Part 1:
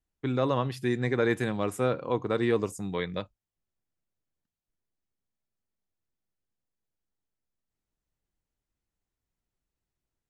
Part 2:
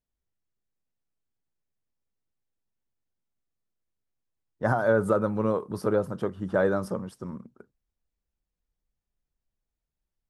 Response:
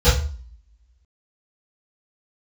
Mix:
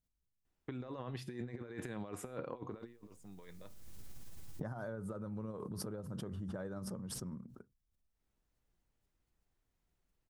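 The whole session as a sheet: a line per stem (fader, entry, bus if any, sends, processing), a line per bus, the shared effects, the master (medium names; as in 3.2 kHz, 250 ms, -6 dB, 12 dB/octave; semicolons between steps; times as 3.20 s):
+3.0 dB, 0.45 s, no send, treble shelf 4.1 kHz -7.5 dB; compressor with a negative ratio -33 dBFS, ratio -0.5; feedback comb 120 Hz, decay 0.35 s, harmonics all, mix 40%; auto duck -22 dB, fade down 0.30 s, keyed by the second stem
-9.5 dB, 0.00 s, no send, tone controls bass +12 dB, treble +5 dB; tremolo 18 Hz, depth 30%; swell ahead of each attack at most 22 dB/s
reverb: none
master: bass shelf 150 Hz -3.5 dB; compression 12:1, threshold -39 dBFS, peak gain reduction 16 dB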